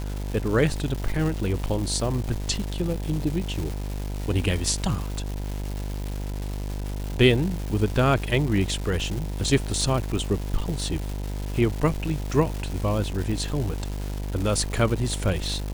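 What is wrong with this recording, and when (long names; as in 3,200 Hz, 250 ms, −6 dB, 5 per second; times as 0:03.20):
mains buzz 50 Hz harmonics 20 −30 dBFS
surface crackle 500 per second −30 dBFS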